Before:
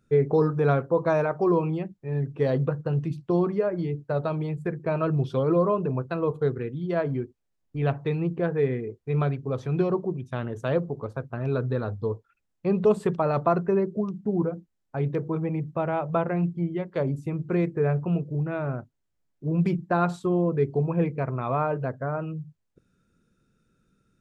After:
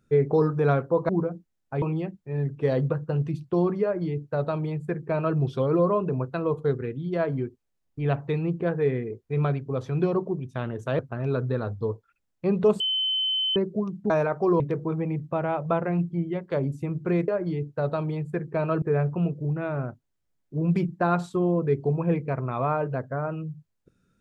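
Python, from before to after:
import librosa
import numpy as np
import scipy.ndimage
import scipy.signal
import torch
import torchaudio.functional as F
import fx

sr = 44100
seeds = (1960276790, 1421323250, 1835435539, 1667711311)

y = fx.edit(x, sr, fx.swap(start_s=1.09, length_s=0.5, other_s=14.31, other_length_s=0.73),
    fx.duplicate(start_s=3.6, length_s=1.54, to_s=17.72),
    fx.cut(start_s=10.76, length_s=0.44),
    fx.bleep(start_s=13.01, length_s=0.76, hz=3060.0, db=-22.5), tone=tone)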